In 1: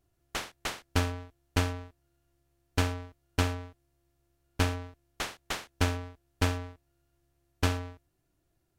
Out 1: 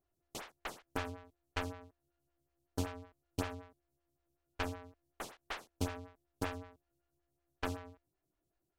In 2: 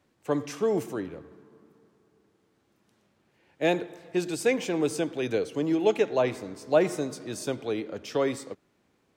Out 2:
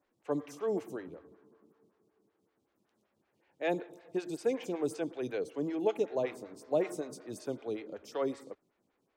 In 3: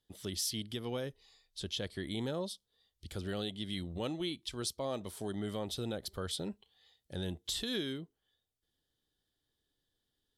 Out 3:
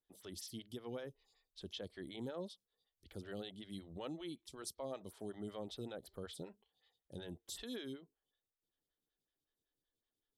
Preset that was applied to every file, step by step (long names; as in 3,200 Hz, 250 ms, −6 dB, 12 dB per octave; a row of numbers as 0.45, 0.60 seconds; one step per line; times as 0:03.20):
phaser with staggered stages 5.3 Hz
level −5.5 dB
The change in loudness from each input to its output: −10.0, −7.5, −9.5 LU